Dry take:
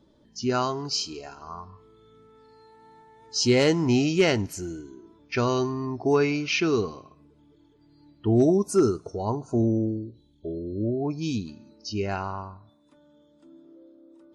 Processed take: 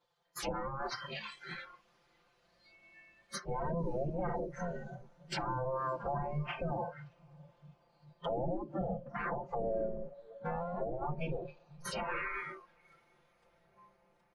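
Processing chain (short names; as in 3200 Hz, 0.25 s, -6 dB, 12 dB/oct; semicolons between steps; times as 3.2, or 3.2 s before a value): minimum comb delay 3.2 ms; treble ducked by the level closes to 460 Hz, closed at -23.5 dBFS; spectral gate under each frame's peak -15 dB weak; high shelf 4400 Hz -6 dB; comb 5.8 ms, depth 93%; in parallel at +1 dB: compressor, threshold -48 dBFS, peak gain reduction 17.5 dB; on the sum: limiter -30.5 dBFS, peak gain reduction 9.5 dB; on a send: diffused feedback echo 0.589 s, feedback 66%, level -13.5 dB; on the sum: spectral noise reduction 19 dB; gain +3.5 dB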